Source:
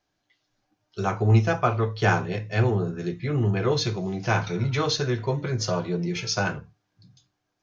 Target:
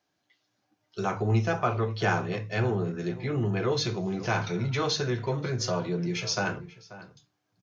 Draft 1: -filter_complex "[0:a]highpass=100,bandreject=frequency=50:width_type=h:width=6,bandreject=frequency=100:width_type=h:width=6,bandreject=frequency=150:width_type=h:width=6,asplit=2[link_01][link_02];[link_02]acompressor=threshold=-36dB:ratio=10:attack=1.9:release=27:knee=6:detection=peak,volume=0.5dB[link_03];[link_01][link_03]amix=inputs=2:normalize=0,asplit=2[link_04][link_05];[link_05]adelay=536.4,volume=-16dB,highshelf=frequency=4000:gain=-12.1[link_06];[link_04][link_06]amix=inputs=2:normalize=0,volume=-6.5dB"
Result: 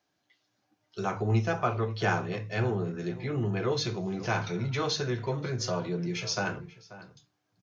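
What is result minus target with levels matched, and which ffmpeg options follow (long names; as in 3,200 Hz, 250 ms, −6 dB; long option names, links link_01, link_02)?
downward compressor: peak gain reduction +8 dB
-filter_complex "[0:a]highpass=100,bandreject=frequency=50:width_type=h:width=6,bandreject=frequency=100:width_type=h:width=6,bandreject=frequency=150:width_type=h:width=6,asplit=2[link_01][link_02];[link_02]acompressor=threshold=-27dB:ratio=10:attack=1.9:release=27:knee=6:detection=peak,volume=0.5dB[link_03];[link_01][link_03]amix=inputs=2:normalize=0,asplit=2[link_04][link_05];[link_05]adelay=536.4,volume=-16dB,highshelf=frequency=4000:gain=-12.1[link_06];[link_04][link_06]amix=inputs=2:normalize=0,volume=-6.5dB"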